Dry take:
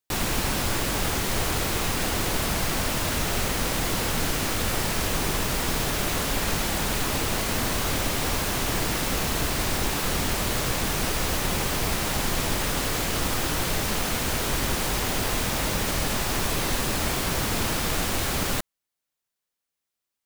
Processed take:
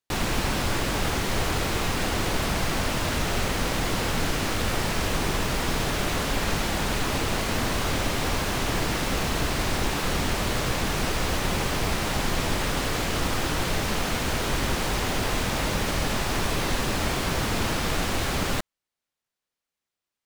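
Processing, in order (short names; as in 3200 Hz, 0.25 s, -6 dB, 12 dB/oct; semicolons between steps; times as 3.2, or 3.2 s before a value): high shelf 8200 Hz -11 dB; gain +1 dB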